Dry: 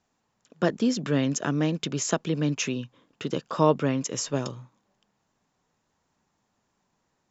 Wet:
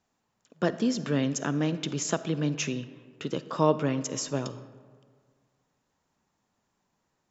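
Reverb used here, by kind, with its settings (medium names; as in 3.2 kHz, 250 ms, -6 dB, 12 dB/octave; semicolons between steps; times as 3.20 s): algorithmic reverb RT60 1.8 s, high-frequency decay 0.5×, pre-delay 10 ms, DRR 13.5 dB; trim -2.5 dB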